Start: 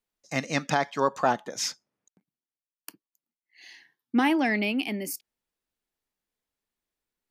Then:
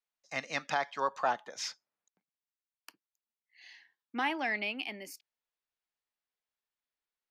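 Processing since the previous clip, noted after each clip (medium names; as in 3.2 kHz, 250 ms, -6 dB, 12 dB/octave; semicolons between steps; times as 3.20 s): three-band isolator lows -13 dB, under 560 Hz, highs -13 dB, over 5.7 kHz; trim -4.5 dB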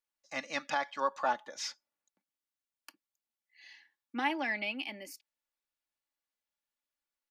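comb 3.5 ms, depth 57%; trim -2 dB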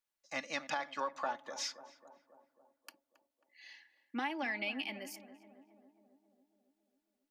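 compression, threshold -33 dBFS, peak gain reduction 8.5 dB; tape echo 272 ms, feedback 72%, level -11.5 dB, low-pass 1.1 kHz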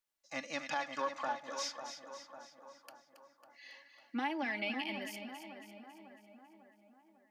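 two-band feedback delay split 1.5 kHz, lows 549 ms, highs 275 ms, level -9 dB; harmonic-percussive split percussive -6 dB; trim +2.5 dB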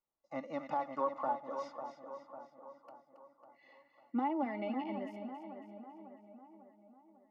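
Savitzky-Golay filter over 65 samples; trim +3.5 dB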